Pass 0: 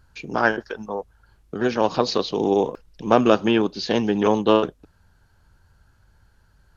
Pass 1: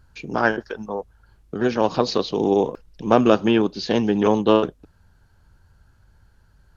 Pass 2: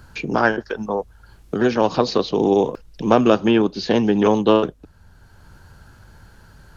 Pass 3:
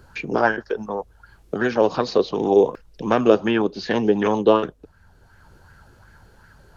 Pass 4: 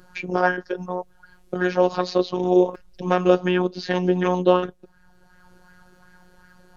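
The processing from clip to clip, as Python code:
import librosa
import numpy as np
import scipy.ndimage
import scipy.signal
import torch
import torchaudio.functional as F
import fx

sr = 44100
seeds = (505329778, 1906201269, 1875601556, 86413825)

y1 = fx.low_shelf(x, sr, hz=450.0, db=3.5)
y1 = y1 * 10.0 ** (-1.0 / 20.0)
y2 = fx.band_squash(y1, sr, depth_pct=40)
y2 = y2 * 10.0 ** (2.0 / 20.0)
y3 = fx.bell_lfo(y2, sr, hz=2.7, low_hz=400.0, high_hz=1900.0, db=10)
y3 = y3 * 10.0 ** (-5.0 / 20.0)
y4 = fx.robotise(y3, sr, hz=181.0)
y4 = y4 * 10.0 ** (1.0 / 20.0)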